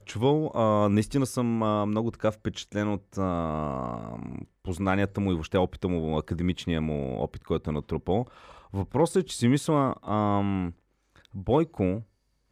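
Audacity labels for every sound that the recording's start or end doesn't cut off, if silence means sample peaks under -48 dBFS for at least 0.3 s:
11.160000	12.040000	sound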